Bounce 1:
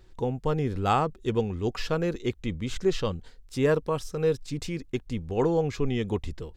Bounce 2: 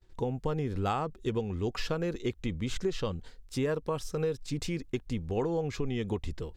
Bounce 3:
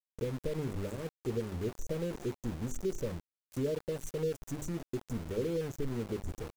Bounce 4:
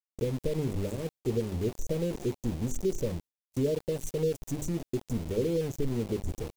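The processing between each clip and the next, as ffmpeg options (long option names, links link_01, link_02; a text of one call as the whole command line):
ffmpeg -i in.wav -af "agate=range=-33dB:threshold=-47dB:ratio=3:detection=peak,acompressor=threshold=-27dB:ratio=6" out.wav
ffmpeg -i in.wav -af "bandreject=frequency=50:width_type=h:width=6,bandreject=frequency=100:width_type=h:width=6,bandreject=frequency=150:width_type=h:width=6,bandreject=frequency=200:width_type=h:width=6,bandreject=frequency=250:width_type=h:width=6,bandreject=frequency=300:width_type=h:width=6,bandreject=frequency=350:width_type=h:width=6,bandreject=frequency=400:width_type=h:width=6,afftfilt=real='re*(1-between(b*sr/4096,630,5700))':imag='im*(1-between(b*sr/4096,630,5700))':win_size=4096:overlap=0.75,aeval=exprs='val(0)*gte(abs(val(0)),0.0126)':channel_layout=same,volume=-2.5dB" out.wav
ffmpeg -i in.wav -af "equalizer=frequency=1400:width_type=o:width=1.2:gain=-8,agate=range=-33dB:threshold=-49dB:ratio=3:detection=peak,volume=5.5dB" out.wav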